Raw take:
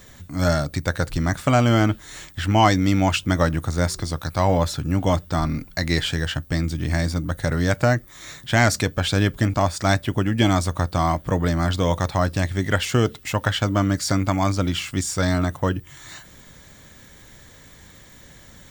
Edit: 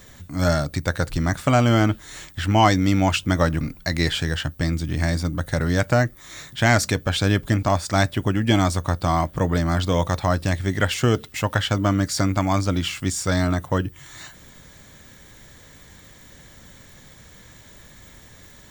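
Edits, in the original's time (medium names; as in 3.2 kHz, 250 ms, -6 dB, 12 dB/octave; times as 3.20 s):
3.61–5.52 s: delete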